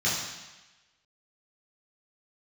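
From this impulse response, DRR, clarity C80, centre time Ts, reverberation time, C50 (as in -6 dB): -8.0 dB, 4.0 dB, 68 ms, 1.1 s, 1.5 dB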